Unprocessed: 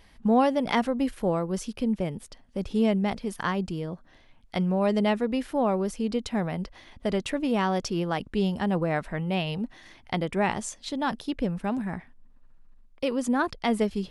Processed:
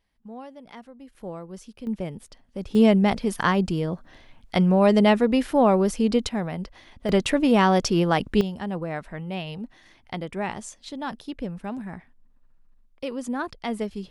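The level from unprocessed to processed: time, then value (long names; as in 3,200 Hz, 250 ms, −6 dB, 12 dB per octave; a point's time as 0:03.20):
−19 dB
from 0:01.15 −10 dB
from 0:01.87 −2 dB
from 0:02.75 +6.5 dB
from 0:06.29 0 dB
from 0:07.09 +7 dB
from 0:08.41 −4 dB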